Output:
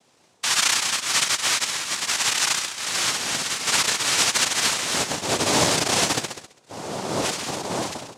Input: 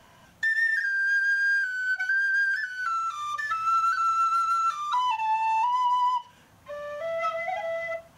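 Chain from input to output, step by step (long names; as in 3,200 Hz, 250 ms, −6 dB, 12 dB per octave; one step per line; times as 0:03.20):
flutter between parallel walls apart 11.4 metres, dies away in 0.89 s
cochlear-implant simulation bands 2
noise gate −40 dBFS, range −6 dB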